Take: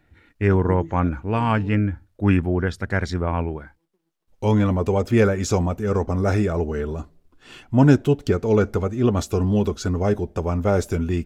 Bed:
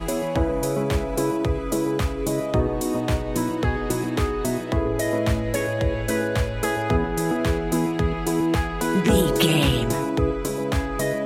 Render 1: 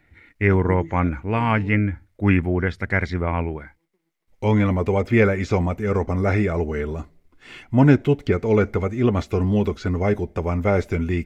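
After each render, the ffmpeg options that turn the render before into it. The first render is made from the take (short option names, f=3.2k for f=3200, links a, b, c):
-filter_complex "[0:a]acrossover=split=4200[a][b];[b]acompressor=threshold=-54dB:ratio=4:attack=1:release=60[c];[a][c]amix=inputs=2:normalize=0,equalizer=f=2.1k:t=o:w=0.31:g=12"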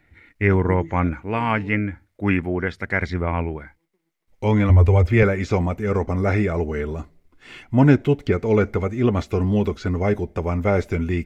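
-filter_complex "[0:a]asettb=1/sr,asplit=3[a][b][c];[a]atrim=end=1.134[d];[b]atrim=start=1.13:end=3.02,asetpts=PTS-STARTPTS,afade=t=in:d=0.004:c=qsin,afade=t=out:st=1.886:d=0.004:c=qsin,lowshelf=f=120:g=-9.5[e];[c]atrim=start=3.016[f];[d][e]acrossfade=d=0.004:c1=hsin:c2=qsin[g];[g][f]acrossfade=d=0.004:c1=qsin:c2=hsin,asettb=1/sr,asplit=3[h][i][j];[h]atrim=end=4.694[k];[i]atrim=start=4.69:end=5.23,asetpts=PTS-STARTPTS,afade=t=in:d=0.004:c=qsin,afade=t=out:st=0.536:d=0.004:c=qsin,lowshelf=f=110:t=q:w=3:g=9.5[l];[j]atrim=start=5.226[m];[k][l]acrossfade=d=0.004:c1=hsin:c2=qsin[n];[n][m]acrossfade=d=0.004:c1=qsin:c2=hsin"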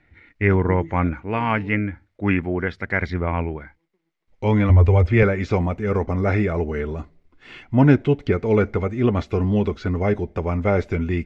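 -af "lowpass=4.8k"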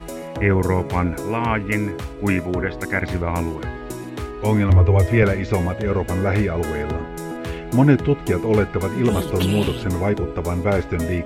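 -filter_complex "[1:a]volume=-6.5dB[a];[0:a][a]amix=inputs=2:normalize=0"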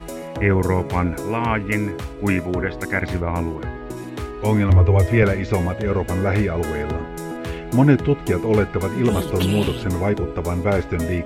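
-filter_complex "[0:a]asettb=1/sr,asplit=3[a][b][c];[a]atrim=end=3.204[d];[b]atrim=start=3.2:end=3.97,asetpts=PTS-STARTPTS,afade=t=in:d=0.004:c=qsin,afade=t=out:st=0.766:d=0.004:c=qsin,highshelf=f=2.8k:g=-8[e];[c]atrim=start=3.966[f];[d][e]acrossfade=d=0.004:c1=hsin:c2=qsin[g];[g][f]acrossfade=d=0.004:c1=qsin:c2=hsin"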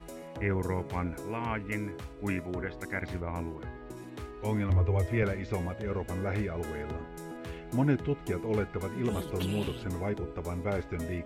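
-af "volume=-12.5dB"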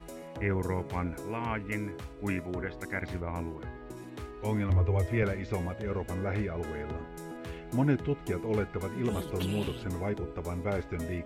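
-filter_complex "[0:a]asettb=1/sr,asplit=3[a][b][c];[a]atrim=end=6.144[d];[b]atrim=start=6.14:end=6.96,asetpts=PTS-STARTPTS,afade=t=in:d=0.004:c=qsin,afade=t=out:st=0.816:d=0.004:c=qsin,highshelf=f=8k:g=-10[e];[c]atrim=start=6.956[f];[d][e]acrossfade=d=0.004:c1=hsin:c2=qsin[g];[g][f]acrossfade=d=0.004:c1=qsin:c2=hsin"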